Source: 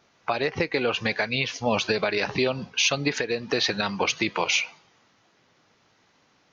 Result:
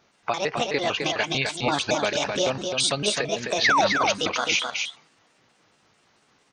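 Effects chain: pitch shift switched off and on +6 st, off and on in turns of 112 ms; painted sound fall, 3.64–3.87 s, 520–2300 Hz -19 dBFS; delay 259 ms -5 dB

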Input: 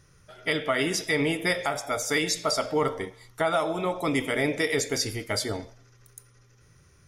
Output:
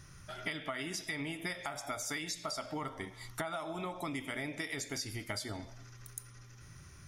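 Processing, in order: peaking EQ 470 Hz -13 dB 0.4 oct; compression 8:1, threshold -41 dBFS, peak gain reduction 18.5 dB; trim +4.5 dB

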